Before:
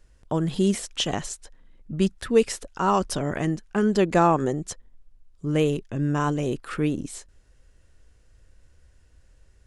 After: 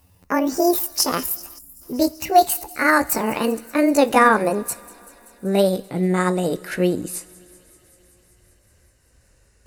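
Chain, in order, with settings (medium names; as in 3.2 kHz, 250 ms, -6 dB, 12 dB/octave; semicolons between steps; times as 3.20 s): pitch bend over the whole clip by +10.5 st ending unshifted; high-pass 110 Hz 6 dB/octave; treble shelf 8.7 kHz +8.5 dB; band-stop 3.3 kHz, Q 5.7; feedback echo behind a high-pass 192 ms, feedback 78%, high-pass 4.1 kHz, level -19 dB; two-slope reverb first 0.3 s, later 3.6 s, from -19 dB, DRR 14 dB; time-frequency box 1.58–1.82 s, 290–6800 Hz -18 dB; trim +5.5 dB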